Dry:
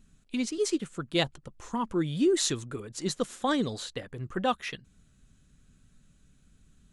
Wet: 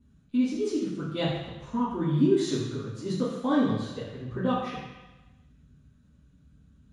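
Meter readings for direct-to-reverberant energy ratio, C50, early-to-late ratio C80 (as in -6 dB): -10.5 dB, 2.0 dB, 4.0 dB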